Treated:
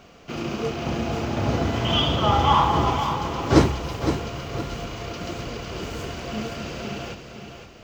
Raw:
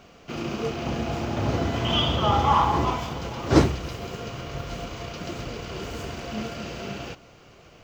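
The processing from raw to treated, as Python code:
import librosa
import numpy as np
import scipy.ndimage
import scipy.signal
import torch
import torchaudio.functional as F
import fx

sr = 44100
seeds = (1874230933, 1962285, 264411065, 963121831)

y = fx.echo_feedback(x, sr, ms=512, feedback_pct=37, wet_db=-8.5)
y = y * 10.0 ** (1.5 / 20.0)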